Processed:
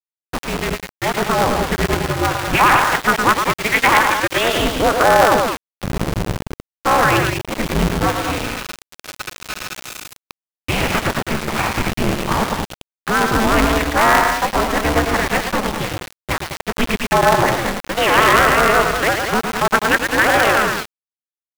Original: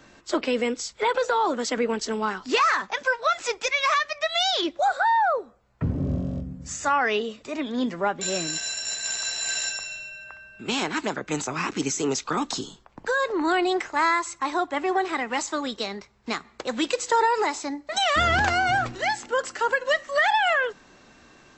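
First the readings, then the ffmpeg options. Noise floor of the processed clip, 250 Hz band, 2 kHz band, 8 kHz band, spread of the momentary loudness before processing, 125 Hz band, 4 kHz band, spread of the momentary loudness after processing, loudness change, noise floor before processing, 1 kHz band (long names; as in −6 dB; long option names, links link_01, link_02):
below −85 dBFS, +8.0 dB, +8.5 dB, +4.0 dB, 11 LU, +12.0 dB, +5.5 dB, 16 LU, +8.5 dB, −54 dBFS, +7.5 dB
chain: -filter_complex "[0:a]acrossover=split=310|820|1200[link_01][link_02][link_03][link_04];[link_02]alimiter=level_in=2.5dB:limit=-24dB:level=0:latency=1:release=178,volume=-2.5dB[link_05];[link_01][link_05][link_03][link_04]amix=inputs=4:normalize=0,highpass=frequency=100:width=0.5412,highpass=frequency=100:width=1.3066,dynaudnorm=framelen=120:gausssize=21:maxgain=4.5dB,anlmdn=0.158,highpass=frequency=160:width_type=q:width=0.5412,highpass=frequency=160:width_type=q:width=1.307,lowpass=frequency=3000:width_type=q:width=0.5176,lowpass=frequency=3000:width_type=q:width=0.7071,lowpass=frequency=3000:width_type=q:width=1.932,afreqshift=-190,aeval=exprs='val(0)+0.00447*(sin(2*PI*60*n/s)+sin(2*PI*2*60*n/s)/2+sin(2*PI*3*60*n/s)/3+sin(2*PI*4*60*n/s)/4+sin(2*PI*5*60*n/s)/5)':channel_layout=same,aecho=1:1:110.8|204.1:0.562|0.501,aeval=exprs='val(0)*gte(abs(val(0)),0.0596)':channel_layout=same,aeval=exprs='val(0)*sgn(sin(2*PI*110*n/s))':channel_layout=same,volume=4dB"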